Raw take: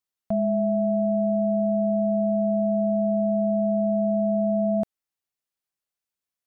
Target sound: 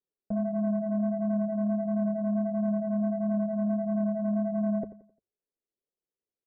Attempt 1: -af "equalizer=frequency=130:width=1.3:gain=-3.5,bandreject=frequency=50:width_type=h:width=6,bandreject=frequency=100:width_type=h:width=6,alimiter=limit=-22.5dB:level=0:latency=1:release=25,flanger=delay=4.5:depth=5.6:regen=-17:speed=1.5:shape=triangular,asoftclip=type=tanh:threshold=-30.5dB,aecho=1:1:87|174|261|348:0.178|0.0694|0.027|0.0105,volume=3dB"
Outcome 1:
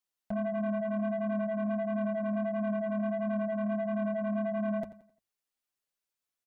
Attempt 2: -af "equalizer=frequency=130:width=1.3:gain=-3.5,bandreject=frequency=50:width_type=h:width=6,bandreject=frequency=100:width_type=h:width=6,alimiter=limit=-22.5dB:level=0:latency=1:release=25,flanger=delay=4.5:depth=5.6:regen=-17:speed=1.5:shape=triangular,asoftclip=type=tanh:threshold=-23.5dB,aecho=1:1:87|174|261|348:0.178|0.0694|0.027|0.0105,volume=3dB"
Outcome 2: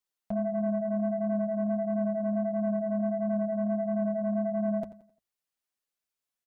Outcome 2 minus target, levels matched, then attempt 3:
500 Hz band +3.0 dB
-af "lowpass=frequency=440:width_type=q:width=3,equalizer=frequency=130:width=1.3:gain=-3.5,bandreject=frequency=50:width_type=h:width=6,bandreject=frequency=100:width_type=h:width=6,alimiter=limit=-22.5dB:level=0:latency=1:release=25,flanger=delay=4.5:depth=5.6:regen=-17:speed=1.5:shape=triangular,asoftclip=type=tanh:threshold=-23.5dB,aecho=1:1:87|174|261|348:0.178|0.0694|0.027|0.0105,volume=3dB"

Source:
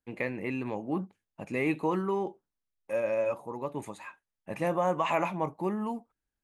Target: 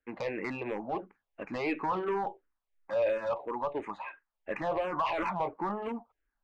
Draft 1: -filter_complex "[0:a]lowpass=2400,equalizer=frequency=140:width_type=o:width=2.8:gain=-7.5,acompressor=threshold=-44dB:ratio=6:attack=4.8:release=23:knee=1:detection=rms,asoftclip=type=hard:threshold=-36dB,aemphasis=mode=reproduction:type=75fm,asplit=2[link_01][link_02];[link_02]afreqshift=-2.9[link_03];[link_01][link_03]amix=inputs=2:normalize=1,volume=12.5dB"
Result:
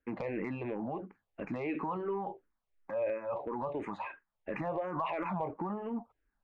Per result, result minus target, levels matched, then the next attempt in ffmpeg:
downward compressor: peak gain reduction +8.5 dB; 125 Hz band +6.5 dB
-filter_complex "[0:a]lowpass=2400,equalizer=frequency=140:width_type=o:width=2.8:gain=-7.5,acompressor=threshold=-36dB:ratio=6:attack=4.8:release=23:knee=1:detection=rms,asoftclip=type=hard:threshold=-36dB,aemphasis=mode=reproduction:type=75fm,asplit=2[link_01][link_02];[link_02]afreqshift=-2.9[link_03];[link_01][link_03]amix=inputs=2:normalize=1,volume=12.5dB"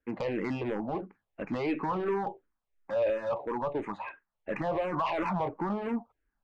125 Hz band +6.0 dB
-filter_complex "[0:a]lowpass=2400,equalizer=frequency=140:width_type=o:width=2.8:gain=-18,acompressor=threshold=-36dB:ratio=6:attack=4.8:release=23:knee=1:detection=rms,asoftclip=type=hard:threshold=-36dB,aemphasis=mode=reproduction:type=75fm,asplit=2[link_01][link_02];[link_02]afreqshift=-2.9[link_03];[link_01][link_03]amix=inputs=2:normalize=1,volume=12.5dB"

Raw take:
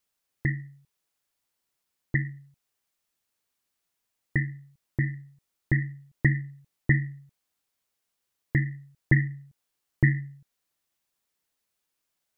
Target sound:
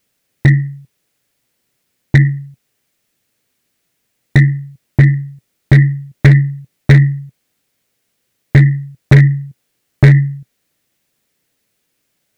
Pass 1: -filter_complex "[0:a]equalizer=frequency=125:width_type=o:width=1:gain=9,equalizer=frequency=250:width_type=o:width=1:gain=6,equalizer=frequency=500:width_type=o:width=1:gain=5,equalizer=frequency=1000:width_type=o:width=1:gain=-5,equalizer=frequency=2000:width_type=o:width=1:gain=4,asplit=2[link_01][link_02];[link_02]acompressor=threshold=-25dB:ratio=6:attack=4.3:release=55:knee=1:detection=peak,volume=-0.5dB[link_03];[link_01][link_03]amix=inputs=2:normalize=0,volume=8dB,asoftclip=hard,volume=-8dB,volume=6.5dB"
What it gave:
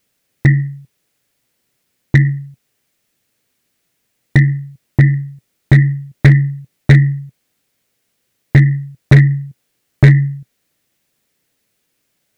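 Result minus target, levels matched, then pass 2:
downward compressor: peak gain reduction +6 dB
-filter_complex "[0:a]equalizer=frequency=125:width_type=o:width=1:gain=9,equalizer=frequency=250:width_type=o:width=1:gain=6,equalizer=frequency=500:width_type=o:width=1:gain=5,equalizer=frequency=1000:width_type=o:width=1:gain=-5,equalizer=frequency=2000:width_type=o:width=1:gain=4,asplit=2[link_01][link_02];[link_02]acompressor=threshold=-18dB:ratio=6:attack=4.3:release=55:knee=1:detection=peak,volume=-0.5dB[link_03];[link_01][link_03]amix=inputs=2:normalize=0,volume=8dB,asoftclip=hard,volume=-8dB,volume=6.5dB"

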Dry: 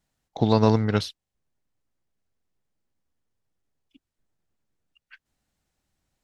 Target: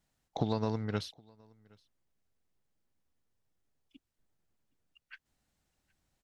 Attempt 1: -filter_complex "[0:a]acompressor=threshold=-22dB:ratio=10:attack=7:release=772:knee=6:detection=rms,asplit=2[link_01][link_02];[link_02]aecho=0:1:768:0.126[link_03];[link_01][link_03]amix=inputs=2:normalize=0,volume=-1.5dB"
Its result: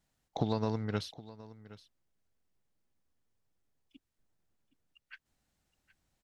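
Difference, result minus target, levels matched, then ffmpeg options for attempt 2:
echo-to-direct +10 dB
-filter_complex "[0:a]acompressor=threshold=-22dB:ratio=10:attack=7:release=772:knee=6:detection=rms,asplit=2[link_01][link_02];[link_02]aecho=0:1:768:0.0398[link_03];[link_01][link_03]amix=inputs=2:normalize=0,volume=-1.5dB"

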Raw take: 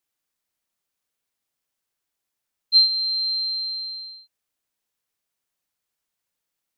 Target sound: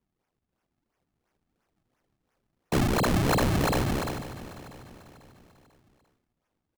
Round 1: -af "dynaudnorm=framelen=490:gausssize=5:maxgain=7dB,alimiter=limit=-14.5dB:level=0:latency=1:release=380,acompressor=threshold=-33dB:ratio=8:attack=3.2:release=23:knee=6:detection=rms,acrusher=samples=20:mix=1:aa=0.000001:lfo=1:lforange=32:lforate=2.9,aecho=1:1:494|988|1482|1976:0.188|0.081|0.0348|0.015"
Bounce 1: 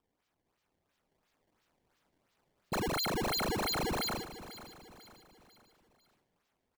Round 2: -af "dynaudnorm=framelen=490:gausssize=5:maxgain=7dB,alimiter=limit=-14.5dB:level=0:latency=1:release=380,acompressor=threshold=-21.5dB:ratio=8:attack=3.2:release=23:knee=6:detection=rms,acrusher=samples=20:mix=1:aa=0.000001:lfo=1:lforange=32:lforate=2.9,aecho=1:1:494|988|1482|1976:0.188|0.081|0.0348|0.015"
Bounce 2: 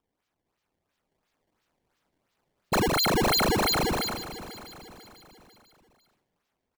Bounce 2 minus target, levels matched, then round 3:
sample-and-hold swept by an LFO: distortion −13 dB
-af "dynaudnorm=framelen=490:gausssize=5:maxgain=7dB,alimiter=limit=-14.5dB:level=0:latency=1:release=380,acompressor=threshold=-21.5dB:ratio=8:attack=3.2:release=23:knee=6:detection=rms,acrusher=samples=52:mix=1:aa=0.000001:lfo=1:lforange=83.2:lforate=2.9,aecho=1:1:494|988|1482|1976:0.188|0.081|0.0348|0.015"

